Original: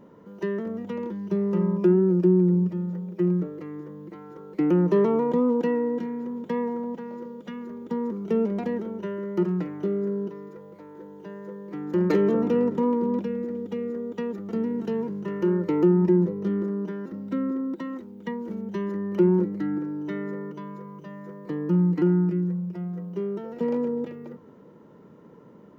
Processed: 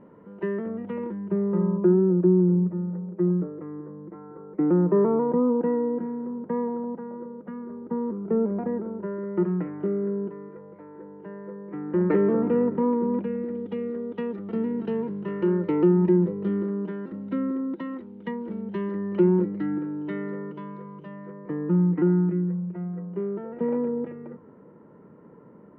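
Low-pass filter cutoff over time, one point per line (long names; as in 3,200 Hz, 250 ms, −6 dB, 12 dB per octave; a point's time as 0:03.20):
low-pass filter 24 dB per octave
0:00.99 2,500 Hz
0:01.73 1,500 Hz
0:09.00 1,500 Hz
0:09.51 2,100 Hz
0:13.03 2,100 Hz
0:13.65 3,400 Hz
0:21.04 3,400 Hz
0:21.51 2,100 Hz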